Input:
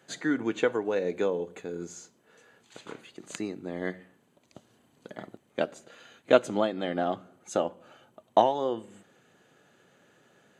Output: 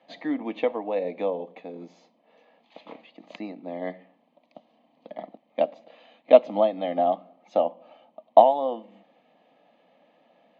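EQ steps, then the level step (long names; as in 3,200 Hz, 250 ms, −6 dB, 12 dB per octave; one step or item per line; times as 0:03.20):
high-frequency loss of the air 320 metres
loudspeaker in its box 290–5,600 Hz, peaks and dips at 680 Hz +4 dB, 1,300 Hz +5 dB, 2,200 Hz +4 dB
phaser with its sweep stopped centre 390 Hz, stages 6
+6.0 dB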